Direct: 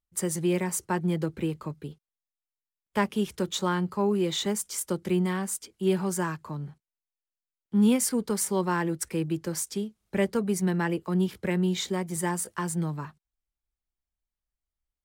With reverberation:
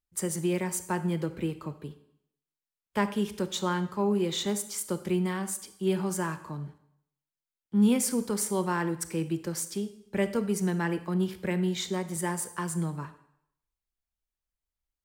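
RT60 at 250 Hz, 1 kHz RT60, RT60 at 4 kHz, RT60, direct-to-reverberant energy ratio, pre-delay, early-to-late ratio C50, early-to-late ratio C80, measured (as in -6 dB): 0.65 s, 0.75 s, 0.70 s, 0.75 s, 11.5 dB, 29 ms, 13.0 dB, 15.5 dB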